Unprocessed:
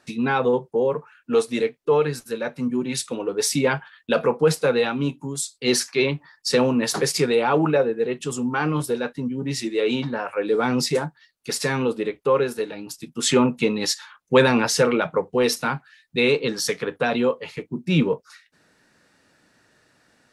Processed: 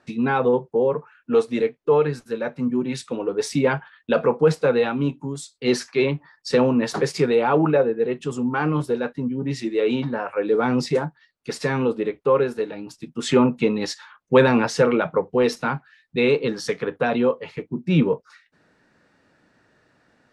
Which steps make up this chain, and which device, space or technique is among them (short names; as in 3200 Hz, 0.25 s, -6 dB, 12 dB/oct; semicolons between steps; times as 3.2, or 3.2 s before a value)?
through cloth (LPF 9200 Hz 12 dB/oct; high shelf 3200 Hz -12 dB); gain +1.5 dB